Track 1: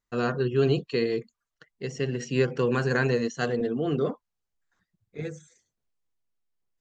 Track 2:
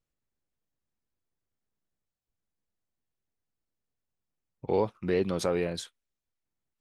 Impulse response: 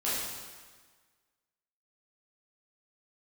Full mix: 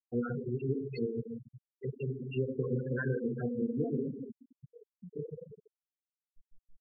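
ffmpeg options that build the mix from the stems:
-filter_complex "[0:a]acrossover=split=84|190|3100[link_01][link_02][link_03][link_04];[link_01]acompressor=threshold=-54dB:ratio=4[link_05];[link_02]acompressor=threshold=-37dB:ratio=4[link_06];[link_03]acompressor=threshold=-31dB:ratio=4[link_07];[link_04]acompressor=threshold=-43dB:ratio=4[link_08];[link_05][link_06][link_07][link_08]amix=inputs=4:normalize=0,acrossover=split=660[link_09][link_10];[link_09]aeval=exprs='val(0)*(1-1/2+1/2*cos(2*PI*5.8*n/s))':channel_layout=same[link_11];[link_10]aeval=exprs='val(0)*(1-1/2-1/2*cos(2*PI*5.8*n/s))':channel_layout=same[link_12];[link_11][link_12]amix=inputs=2:normalize=0,volume=-1.5dB,asplit=2[link_13][link_14];[link_14]volume=-6.5dB[link_15];[1:a]acompressor=threshold=-33dB:ratio=6,alimiter=level_in=8dB:limit=-24dB:level=0:latency=1:release=74,volume=-8dB,volume=-12.5dB,asplit=2[link_16][link_17];[link_17]volume=-17.5dB[link_18];[2:a]atrim=start_sample=2205[link_19];[link_15][link_18]amix=inputs=2:normalize=0[link_20];[link_20][link_19]afir=irnorm=-1:irlink=0[link_21];[link_13][link_16][link_21]amix=inputs=3:normalize=0,acompressor=mode=upward:threshold=-34dB:ratio=2.5,afftfilt=real='re*gte(hypot(re,im),0.0631)':imag='im*gte(hypot(re,im),0.0631)':win_size=1024:overlap=0.75,asuperstop=centerf=850:order=4:qfactor=3.4"

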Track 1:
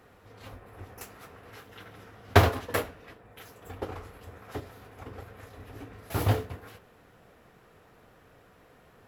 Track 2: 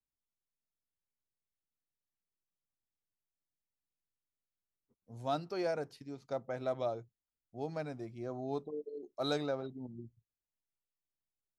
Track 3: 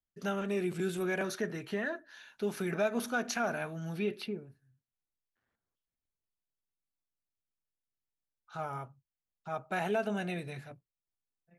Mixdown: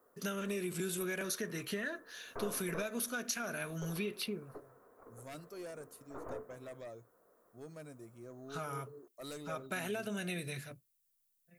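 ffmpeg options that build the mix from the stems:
ffmpeg -i stem1.wav -i stem2.wav -i stem3.wav -filter_complex "[0:a]highpass=440,aeval=exprs='(tanh(39.8*val(0)+0.5)-tanh(0.5))/39.8':channel_layout=same,lowpass=frequency=1200:width=0.5412,lowpass=frequency=1200:width=1.3066,volume=-4dB[link_01];[1:a]aexciter=amount=11.8:drive=4.2:freq=7100,aeval=exprs='0.0891*sin(PI/2*2.24*val(0)/0.0891)':channel_layout=same,volume=-19dB[link_02];[2:a]aemphasis=mode=production:type=75kf,acompressor=threshold=-34dB:ratio=5,volume=0dB[link_03];[link_01][link_02][link_03]amix=inputs=3:normalize=0,equalizer=frequency=800:width=4.1:gain=-11.5" out.wav

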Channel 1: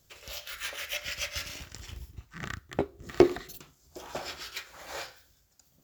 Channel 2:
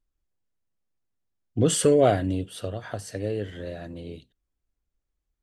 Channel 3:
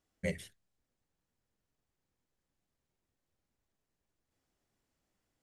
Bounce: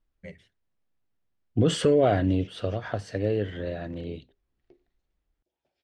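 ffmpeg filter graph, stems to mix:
ffmpeg -i stem1.wav -i stem2.wav -i stem3.wav -filter_complex "[0:a]equalizer=frequency=1200:width=1.7:gain=-13.5,adelay=1500,volume=-19dB[link_01];[1:a]volume=3dB,asplit=2[link_02][link_03];[2:a]volume=-8dB[link_04];[link_03]apad=whole_len=323682[link_05];[link_01][link_05]sidechaingate=range=-20dB:threshold=-36dB:ratio=16:detection=peak[link_06];[link_06][link_02][link_04]amix=inputs=3:normalize=0,lowpass=3700,alimiter=limit=-12dB:level=0:latency=1:release=28" out.wav

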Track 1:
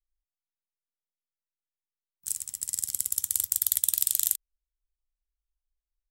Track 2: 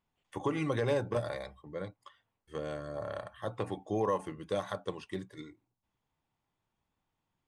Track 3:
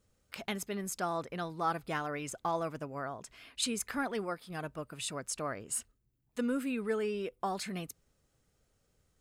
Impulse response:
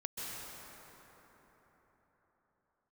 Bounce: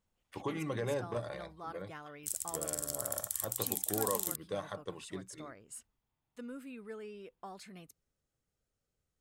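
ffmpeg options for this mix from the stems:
-filter_complex "[0:a]alimiter=limit=-13.5dB:level=0:latency=1:release=56,volume=-3.5dB[link_01];[1:a]volume=-5dB[link_02];[2:a]volume=-12.5dB[link_03];[link_01][link_02][link_03]amix=inputs=3:normalize=0"

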